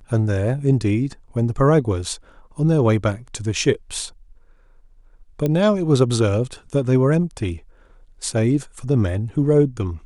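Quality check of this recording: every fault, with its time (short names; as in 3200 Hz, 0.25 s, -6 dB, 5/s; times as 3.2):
5.46 pop -10 dBFS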